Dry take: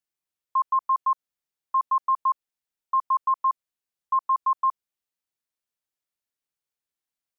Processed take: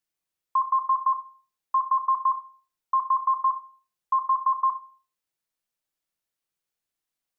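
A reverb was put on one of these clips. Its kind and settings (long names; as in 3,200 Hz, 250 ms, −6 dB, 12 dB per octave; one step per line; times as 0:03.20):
rectangular room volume 290 cubic metres, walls furnished, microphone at 0.67 metres
level +2 dB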